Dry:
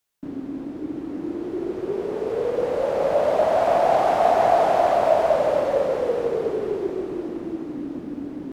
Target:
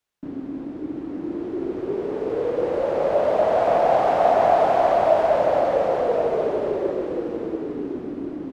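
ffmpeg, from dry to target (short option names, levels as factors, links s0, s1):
-af "highshelf=f=6200:g=-11,aecho=1:1:1083:0.422"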